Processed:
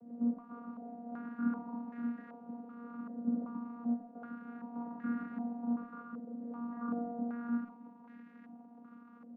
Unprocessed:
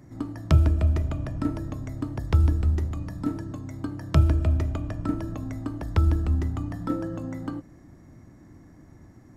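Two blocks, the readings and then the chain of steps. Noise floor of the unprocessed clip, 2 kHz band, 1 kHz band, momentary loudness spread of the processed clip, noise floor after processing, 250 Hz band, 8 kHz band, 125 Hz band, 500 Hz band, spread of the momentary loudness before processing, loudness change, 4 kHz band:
-51 dBFS, -9.5 dB, -6.5 dB, 18 LU, -56 dBFS, -5.0 dB, no reading, -33.5 dB, -12.5 dB, 13 LU, -13.5 dB, under -30 dB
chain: spectrogram pixelated in time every 100 ms; reverse; compression 8:1, threshold -29 dBFS, peak gain reduction 14 dB; reverse; crackle 550 per s -41 dBFS; Schroeder reverb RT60 0.34 s, combs from 25 ms, DRR 5 dB; in parallel at -12 dB: Schmitt trigger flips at -35 dBFS; on the sum: vocoder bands 16, saw 237 Hz; speakerphone echo 130 ms, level -12 dB; step-sequenced low-pass 2.6 Hz 580–1800 Hz; trim -3 dB

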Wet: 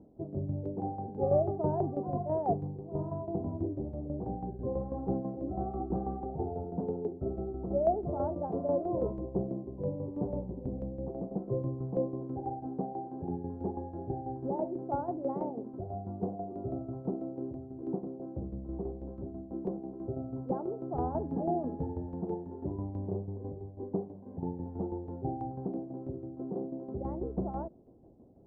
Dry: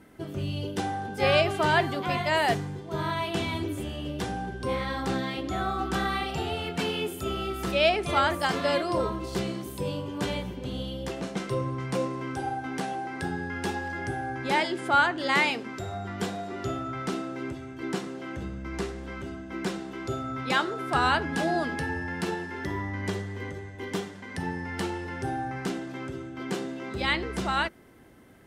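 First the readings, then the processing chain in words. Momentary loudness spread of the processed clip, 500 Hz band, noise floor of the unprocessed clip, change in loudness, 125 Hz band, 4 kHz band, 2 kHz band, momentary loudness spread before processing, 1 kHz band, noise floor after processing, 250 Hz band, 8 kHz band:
9 LU, -3.5 dB, -41 dBFS, -6.5 dB, -3.0 dB, under -40 dB, under -40 dB, 12 LU, -9.5 dB, -47 dBFS, -3.0 dB, under -35 dB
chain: steep low-pass 760 Hz 36 dB/octave; tremolo saw down 6.1 Hz, depth 65%

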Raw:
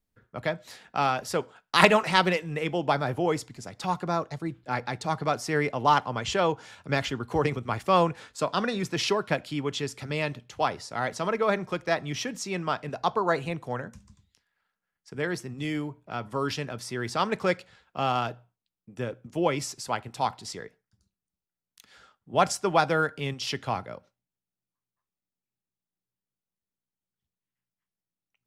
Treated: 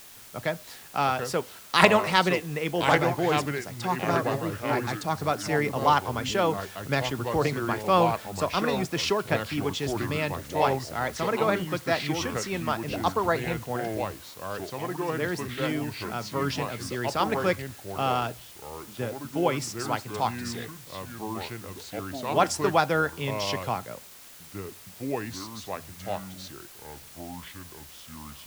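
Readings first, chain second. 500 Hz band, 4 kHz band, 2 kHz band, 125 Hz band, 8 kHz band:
+1.5 dB, +1.0 dB, +1.0 dB, +2.0 dB, +2.0 dB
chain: ever faster or slower copies 617 ms, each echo -4 st, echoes 2, each echo -6 dB; word length cut 8-bit, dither triangular

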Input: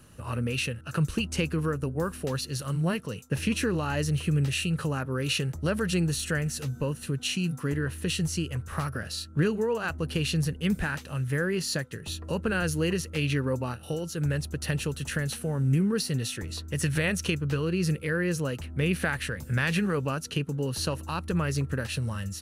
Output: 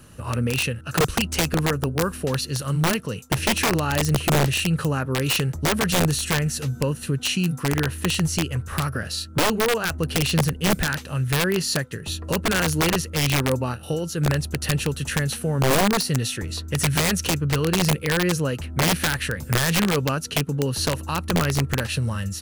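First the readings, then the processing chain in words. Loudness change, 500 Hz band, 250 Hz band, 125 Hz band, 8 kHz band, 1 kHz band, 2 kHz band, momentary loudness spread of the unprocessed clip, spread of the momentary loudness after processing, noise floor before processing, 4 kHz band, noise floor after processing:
+6.0 dB, +5.5 dB, +4.5 dB, +5.0 dB, +9.5 dB, +10.5 dB, +6.0 dB, 6 LU, 6 LU, -44 dBFS, +8.5 dB, -38 dBFS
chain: integer overflow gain 20 dB; trim +6 dB

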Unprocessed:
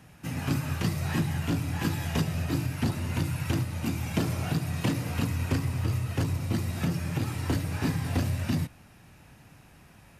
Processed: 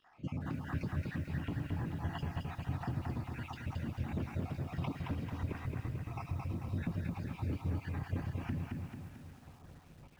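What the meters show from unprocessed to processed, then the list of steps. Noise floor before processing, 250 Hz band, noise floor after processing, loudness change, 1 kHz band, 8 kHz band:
-55 dBFS, -10.0 dB, -57 dBFS, -10.0 dB, -8.0 dB, under -20 dB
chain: random holes in the spectrogram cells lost 57%; band-stop 4 kHz, Q 28; peak limiter -22.5 dBFS, peak gain reduction 6.5 dB; compression 6:1, threshold -35 dBFS, peak gain reduction 8.5 dB; tremolo saw down 1.5 Hz, depth 40%; feedback comb 130 Hz, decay 1.9 s, mix 30%; crackle 380 per s -58 dBFS; tape spacing loss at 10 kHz 32 dB; feedback comb 140 Hz, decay 0.86 s, harmonics all, mix 30%; filtered feedback delay 353 ms, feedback 77%, low-pass 4 kHz, level -22 dB; bit-crushed delay 221 ms, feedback 55%, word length 12-bit, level -3 dB; trim +8.5 dB

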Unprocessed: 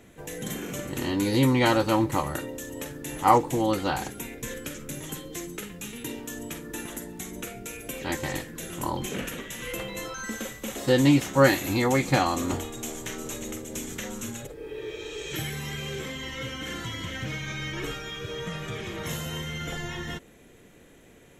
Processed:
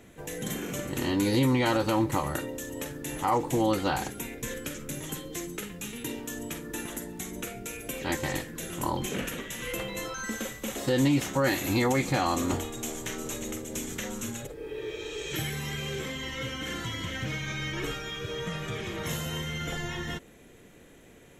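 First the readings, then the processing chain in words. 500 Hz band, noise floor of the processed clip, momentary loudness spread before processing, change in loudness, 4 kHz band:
-3.0 dB, -53 dBFS, 15 LU, -2.5 dB, -1.0 dB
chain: peak limiter -16 dBFS, peak gain reduction 11 dB

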